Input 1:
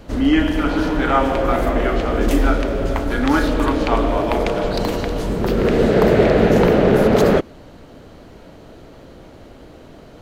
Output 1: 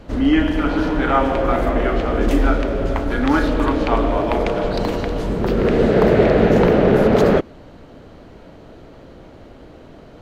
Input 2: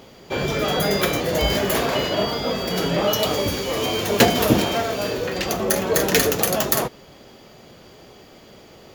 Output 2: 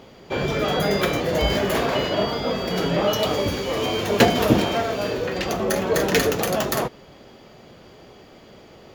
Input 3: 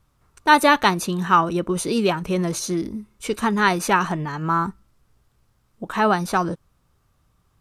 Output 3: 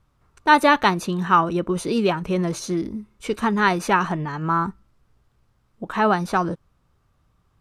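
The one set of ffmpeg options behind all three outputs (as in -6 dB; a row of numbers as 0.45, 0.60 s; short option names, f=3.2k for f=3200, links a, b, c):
-af "highshelf=f=5.9k:g=-10"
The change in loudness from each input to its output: 0.0, -1.0, -0.5 LU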